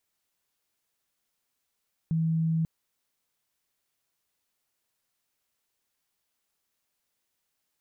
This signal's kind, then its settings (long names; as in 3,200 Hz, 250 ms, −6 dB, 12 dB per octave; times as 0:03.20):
tone sine 162 Hz −23 dBFS 0.54 s